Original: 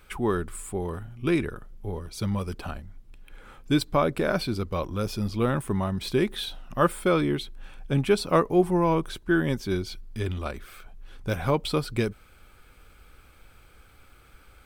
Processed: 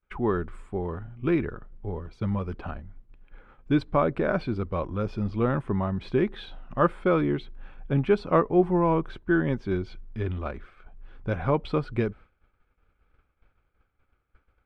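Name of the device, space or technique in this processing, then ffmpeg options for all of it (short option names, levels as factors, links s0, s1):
hearing-loss simulation: -af "lowpass=2000,agate=range=0.0224:threshold=0.00891:ratio=3:detection=peak"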